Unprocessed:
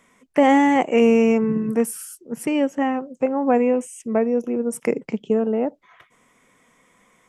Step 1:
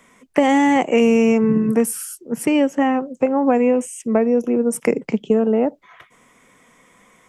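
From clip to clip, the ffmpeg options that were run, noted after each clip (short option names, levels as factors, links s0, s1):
-filter_complex "[0:a]acrossover=split=170|3000[s0][s1][s2];[s1]acompressor=threshold=0.126:ratio=6[s3];[s0][s3][s2]amix=inputs=3:normalize=0,volume=1.88"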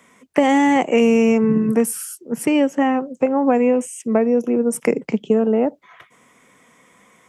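-af "highpass=75"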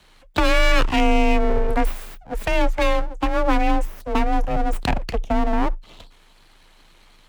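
-af "equalizer=f=250:t=o:w=1:g=5,equalizer=f=1000:t=o:w=1:g=5,equalizer=f=2000:t=o:w=1:g=10,equalizer=f=4000:t=o:w=1:g=-3,aeval=exprs='abs(val(0))':c=same,afreqshift=26,volume=0.562"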